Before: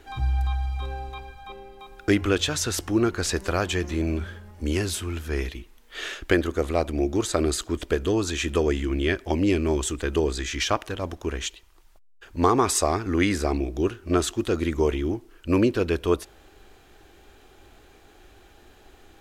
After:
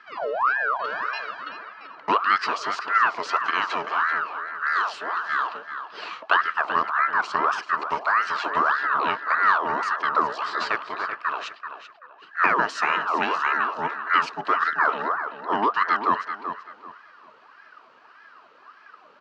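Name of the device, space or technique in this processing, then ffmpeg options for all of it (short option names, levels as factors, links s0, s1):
voice changer toy: -filter_complex "[0:a]aeval=exprs='val(0)*sin(2*PI*1100*n/s+1100*0.55/1.7*sin(2*PI*1.7*n/s))':c=same,highpass=460,equalizer=f=540:t=q:w=4:g=-9,equalizer=f=800:t=q:w=4:g=-8,equalizer=f=1200:t=q:w=4:g=5,equalizer=f=2100:t=q:w=4:g=-9,equalizer=f=3500:t=q:w=4:g=-10,lowpass=f=4000:w=0.5412,lowpass=f=4000:w=1.3066,asettb=1/sr,asplit=3[s0][s1][s2];[s0]atrim=end=0.844[s3];[s1]atrim=start=0.84:end=1.49,asetpts=PTS-STARTPTS,afade=t=in:d=0.004:c=qsin,afade=t=out:st=0.646:d=0.004:c=qsin,equalizer=f=5000:w=0.39:g=11.5[s4];[s2]atrim=start=1.486[s5];[s3][s4]acrossfade=d=0.004:c1=hsin:c2=qsin[s6];[s6][s5]acrossfade=d=0.004:c1=qsin:c2=hsin,asplit=2[s7][s8];[s8]adelay=385,lowpass=f=4200:p=1,volume=0.355,asplit=2[s9][s10];[s10]adelay=385,lowpass=f=4200:p=1,volume=0.27,asplit=2[s11][s12];[s12]adelay=385,lowpass=f=4200:p=1,volume=0.27[s13];[s7][s9][s11][s13]amix=inputs=4:normalize=0,volume=1.88"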